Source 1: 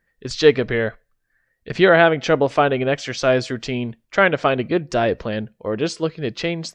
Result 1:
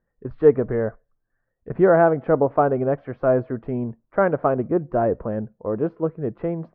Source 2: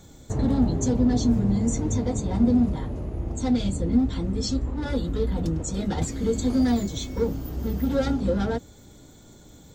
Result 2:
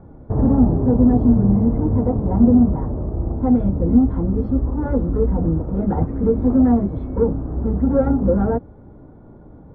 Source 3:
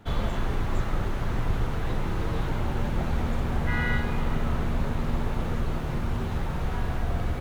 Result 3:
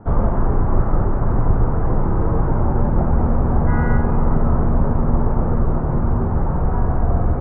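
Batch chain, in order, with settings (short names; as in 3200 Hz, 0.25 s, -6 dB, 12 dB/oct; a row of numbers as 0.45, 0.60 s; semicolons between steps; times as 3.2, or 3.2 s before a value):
LPF 1200 Hz 24 dB/oct; normalise peaks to -3 dBFS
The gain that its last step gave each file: -1.0, +7.0, +10.5 dB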